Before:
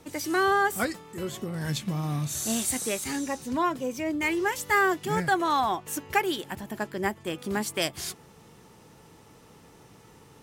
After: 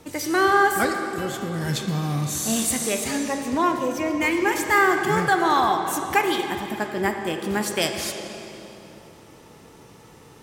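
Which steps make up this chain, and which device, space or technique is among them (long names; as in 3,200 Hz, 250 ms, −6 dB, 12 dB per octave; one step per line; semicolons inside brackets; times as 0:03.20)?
filtered reverb send (on a send: high-pass filter 210 Hz 24 dB per octave + low-pass filter 7,600 Hz 12 dB per octave + convolution reverb RT60 3.2 s, pre-delay 21 ms, DRR 4 dB)
on the sum: level +4 dB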